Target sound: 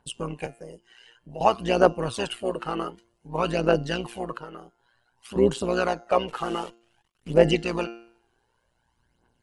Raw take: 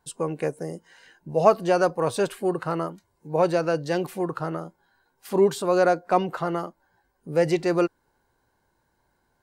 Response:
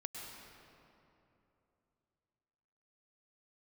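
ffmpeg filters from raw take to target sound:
-filter_complex "[0:a]asettb=1/sr,asplit=3[s0][s1][s2];[s0]atrim=end=6.284[s3];[s1]atrim=start=6.28:end=7.34,asetpts=PTS-STARTPTS,afade=t=in:d=0.004:c=qsin,afade=t=out:st=1.056:d=0.004:c=qsin,acrusher=bits=8:dc=4:mix=0:aa=0.000001[s4];[s2]atrim=start=7.336[s5];[s3][s4]acrossfade=d=0.004:c1=hsin:c2=qsin[s6];[s6][s5]acrossfade=d=0.004:c1=qsin:c2=hsin,aphaser=in_gain=1:out_gain=1:delay=2.7:decay=0.61:speed=0.54:type=triangular,equalizer=f=2900:t=o:w=0.26:g=13,asettb=1/sr,asplit=3[s7][s8][s9];[s7]atrim=end=0.464[s10];[s8]atrim=start=0.46:end=1.41,asetpts=PTS-STARTPTS,afade=t=in:d=0.004:c=qsin,afade=t=out:st=0.946:d=0.004:c=qsin,acrossover=split=130[s11][s12];[s12]acompressor=threshold=0.00282:ratio=1.5[s13];[s11][s13]amix=inputs=2:normalize=0[s14];[s9]atrim=start=1.406[s15];[s10][s14]acrossfade=d=0.004:c1=hsin:c2=qsin[s16];[s16][s15]acrossfade=d=0.004:c1=qsin:c2=hsin,bandreject=f=347.5:t=h:w=4,bandreject=f=695:t=h:w=4,bandreject=f=1042.5:t=h:w=4,bandreject=f=1390:t=h:w=4,bandreject=f=1737.5:t=h:w=4,bandreject=f=2085:t=h:w=4,bandreject=f=2432.5:t=h:w=4,bandreject=f=2780:t=h:w=4,bandreject=f=3127.5:t=h:w=4,bandreject=f=3475:t=h:w=4,bandreject=f=3822.5:t=h:w=4,bandreject=f=4170:t=h:w=4,bandreject=f=4517.5:t=h:w=4,bandreject=f=4865:t=h:w=4,bandreject=f=5212.5:t=h:w=4,bandreject=f=5560:t=h:w=4,bandreject=f=5907.5:t=h:w=4,bandreject=f=6255:t=h:w=4,bandreject=f=6602.5:t=h:w=4,bandreject=f=6950:t=h:w=4,bandreject=f=7297.5:t=h:w=4,bandreject=f=7645:t=h:w=4,tremolo=f=120:d=0.75,asettb=1/sr,asplit=3[s17][s18][s19];[s17]atrim=end=4.374[s20];[s18]atrim=start=4.37:end=5.36,asetpts=PTS-STARTPTS,afade=t=in:d=0.004:c=qsin,afade=t=out:st=0.986:d=0.004:c=qsin,acompressor=threshold=0.00708:ratio=2[s21];[s19]atrim=start=5.356[s22];[s20][s21]acrossfade=d=0.004:c1=hsin:c2=qsin[s23];[s23][s22]acrossfade=d=0.004:c1=qsin:c2=hsin" -ar 48000 -c:a ac3 -b:a 64k

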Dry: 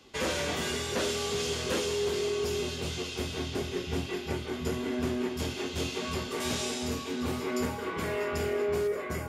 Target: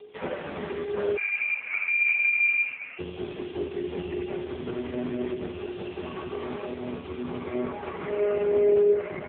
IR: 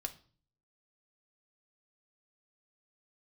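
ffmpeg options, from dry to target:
-filter_complex "[0:a]adynamicequalizer=threshold=0.00398:dfrequency=250:dqfactor=2.9:tfrequency=250:tqfactor=2.9:attack=5:release=100:ratio=0.375:range=2.5:mode=cutabove:tftype=bell,acrossover=split=210|1300|1900[s0][s1][s2][s3];[s0]acrusher=samples=40:mix=1:aa=0.000001:lfo=1:lforange=40:lforate=3.1[s4];[s3]acompressor=threshold=0.00501:ratio=10[s5];[s4][s1][s2][s5]amix=inputs=4:normalize=0,aeval=exprs='val(0)+0.00501*sin(2*PI*420*n/s)':c=same,aecho=1:1:20|73:0.178|0.473[s6];[1:a]atrim=start_sample=2205,asetrate=24255,aresample=44100[s7];[s6][s7]afir=irnorm=-1:irlink=0,asettb=1/sr,asplit=3[s8][s9][s10];[s8]atrim=end=1.174[s11];[s9]atrim=start=1.17:end=2.99,asetpts=PTS-STARTPTS,afade=t=in:d=0.004:c=qsin,afade=t=out:st=1.816:d=0.004:c=qsin,lowpass=f=2400:t=q:w=0.5098,lowpass=f=2400:t=q:w=0.6013,lowpass=f=2400:t=q:w=0.9,lowpass=f=2400:t=q:w=2.563,afreqshift=-2800[s12];[s10]atrim=start=2.986[s13];[s11][s12]acrossfade=d=0.004:c1=hsin:c2=qsin[s14];[s14][s13]acrossfade=d=0.004:c1=qsin:c2=hsin" -ar 8000 -c:a libopencore_amrnb -b:a 4750

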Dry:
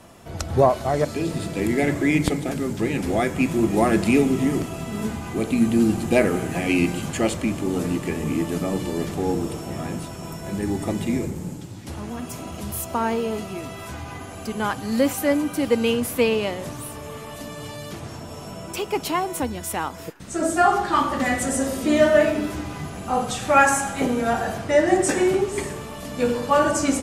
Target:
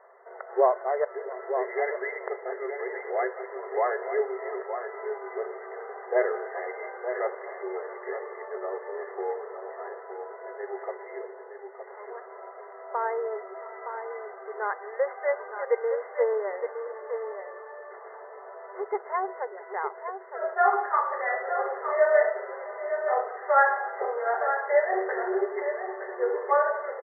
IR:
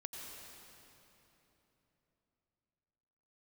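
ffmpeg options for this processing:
-filter_complex "[0:a]asplit=2[s0][s1];[s1]aecho=0:1:915:0.398[s2];[s0][s2]amix=inputs=2:normalize=0,afftfilt=real='re*between(b*sr/4096,370,2100)':imag='im*between(b*sr/4096,370,2100)':win_size=4096:overlap=0.75,asplit=2[s3][s4];[s4]aecho=0:1:669:0.1[s5];[s3][s5]amix=inputs=2:normalize=0,volume=0.631"

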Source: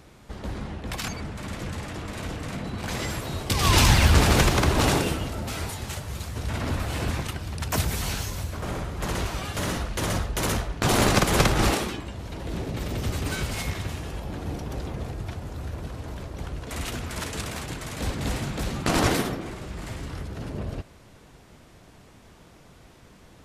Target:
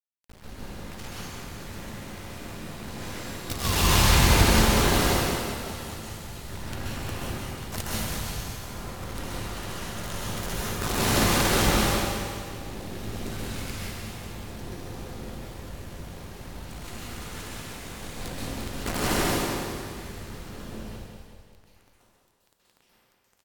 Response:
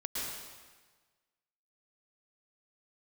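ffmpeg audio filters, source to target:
-filter_complex "[0:a]acrusher=bits=4:dc=4:mix=0:aa=0.000001,aecho=1:1:186|372|558|744|930|1116:0.355|0.188|0.0997|0.0528|0.028|0.0148[s0];[1:a]atrim=start_sample=2205,asetrate=37044,aresample=44100[s1];[s0][s1]afir=irnorm=-1:irlink=0,volume=0.447"

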